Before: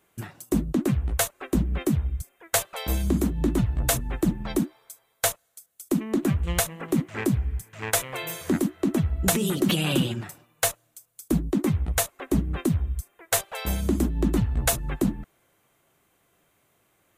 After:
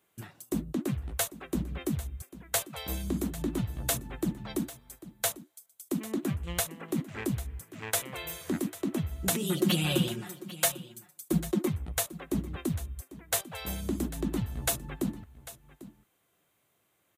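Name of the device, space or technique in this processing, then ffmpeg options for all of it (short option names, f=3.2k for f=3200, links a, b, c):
presence and air boost: -filter_complex "[0:a]highpass=67,equalizer=f=3.6k:t=o:w=0.77:g=3,highshelf=f=9.3k:g=4.5,asettb=1/sr,asplit=3[a][b][c];[a]atrim=end=9.494[d];[b]atrim=start=9.49:end=11.68,asetpts=PTS-STARTPTS,afade=t=in:d=0.004:c=qsin,afade=t=out:st=2.186:d=0.004:c=qsin,aecho=1:1:5.6:0.97,atrim=end_sample=96579[e];[c]atrim=start=11.676[f];[d][e]acrossfade=d=0.004:c1=hsin:c2=qsin[g];[g][f]acrossfade=d=0.004:c1=qsin:c2=hsin,aecho=1:1:796:0.15,volume=-7.5dB"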